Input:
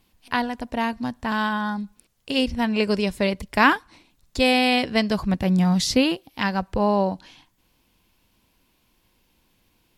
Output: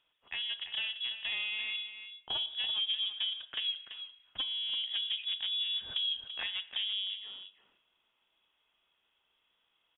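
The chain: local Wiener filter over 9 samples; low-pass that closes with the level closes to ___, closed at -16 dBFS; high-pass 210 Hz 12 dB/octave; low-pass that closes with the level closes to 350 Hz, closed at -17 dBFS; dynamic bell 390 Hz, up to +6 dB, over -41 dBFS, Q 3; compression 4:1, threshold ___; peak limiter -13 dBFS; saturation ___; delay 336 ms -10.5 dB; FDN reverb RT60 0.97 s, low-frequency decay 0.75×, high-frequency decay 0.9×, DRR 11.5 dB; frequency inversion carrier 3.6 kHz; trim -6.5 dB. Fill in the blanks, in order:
1.3 kHz, -23 dBFS, -20.5 dBFS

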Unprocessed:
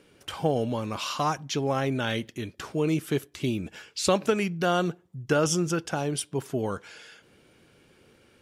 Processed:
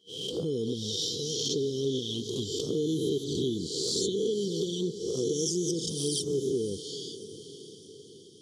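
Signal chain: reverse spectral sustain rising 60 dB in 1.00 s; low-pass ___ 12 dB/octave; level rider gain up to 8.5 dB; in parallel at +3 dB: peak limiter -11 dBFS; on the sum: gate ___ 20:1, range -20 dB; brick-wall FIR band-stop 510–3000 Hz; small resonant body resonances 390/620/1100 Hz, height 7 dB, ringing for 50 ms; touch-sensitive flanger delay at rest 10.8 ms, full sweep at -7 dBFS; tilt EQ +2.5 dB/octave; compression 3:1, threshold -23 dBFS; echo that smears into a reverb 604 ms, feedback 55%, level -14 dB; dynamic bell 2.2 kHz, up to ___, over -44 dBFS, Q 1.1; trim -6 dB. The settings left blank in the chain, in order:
5.3 kHz, -32 dBFS, -6 dB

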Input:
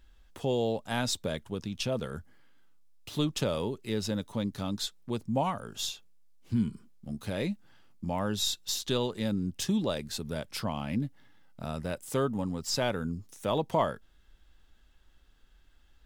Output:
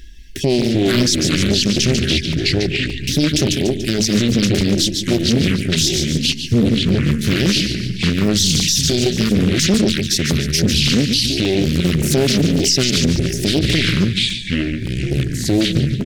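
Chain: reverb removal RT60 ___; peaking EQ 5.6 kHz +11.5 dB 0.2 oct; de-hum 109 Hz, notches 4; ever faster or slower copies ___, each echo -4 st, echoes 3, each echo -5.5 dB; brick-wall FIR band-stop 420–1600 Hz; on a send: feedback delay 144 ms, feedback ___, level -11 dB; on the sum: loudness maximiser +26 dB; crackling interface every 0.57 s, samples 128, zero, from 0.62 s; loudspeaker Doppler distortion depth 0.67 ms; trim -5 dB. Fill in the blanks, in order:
0.86 s, 190 ms, 47%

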